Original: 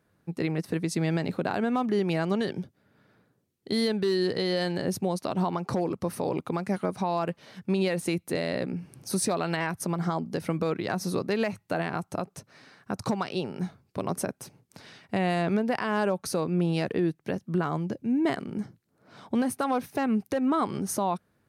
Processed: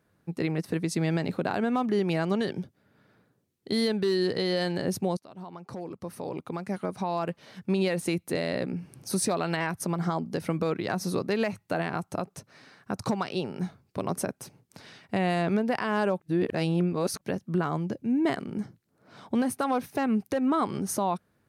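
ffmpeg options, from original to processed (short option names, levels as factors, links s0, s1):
-filter_complex "[0:a]asplit=4[s0][s1][s2][s3];[s0]atrim=end=5.17,asetpts=PTS-STARTPTS,afade=t=out:st=5.166:d=0.004:c=hsin:silence=0.0794328[s4];[s1]atrim=start=5.17:end=16.202,asetpts=PTS-STARTPTS,afade=t=in:d=2.45:silence=0.0794328[s5];[s2]atrim=start=16.198:end=17.212,asetpts=PTS-STARTPTS,areverse[s6];[s3]atrim=start=17.208[s7];[s4][s5]concat=n=2:v=0:a=1[s8];[s8][s6]acrossfade=d=0.004:c1=hsin:c2=hsin[s9];[s9][s7]acrossfade=d=0.004:c1=hsin:c2=hsin"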